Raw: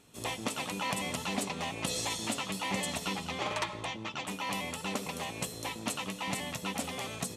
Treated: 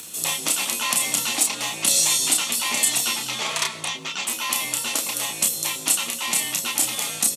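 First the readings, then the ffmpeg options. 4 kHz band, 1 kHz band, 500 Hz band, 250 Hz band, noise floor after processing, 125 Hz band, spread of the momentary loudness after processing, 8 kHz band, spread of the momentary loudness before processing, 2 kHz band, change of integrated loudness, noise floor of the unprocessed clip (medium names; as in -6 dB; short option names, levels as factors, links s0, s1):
+13.5 dB, +5.0 dB, +1.5 dB, 0.0 dB, -35 dBFS, -2.5 dB, 7 LU, +19.5 dB, 4 LU, +9.5 dB, +14.0 dB, -45 dBFS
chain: -filter_complex "[0:a]acompressor=mode=upward:threshold=0.00708:ratio=2.5,afreqshift=46,crystalizer=i=8:c=0,asplit=2[s0][s1];[s1]adelay=31,volume=0.631[s2];[s0][s2]amix=inputs=2:normalize=0,volume=0.891"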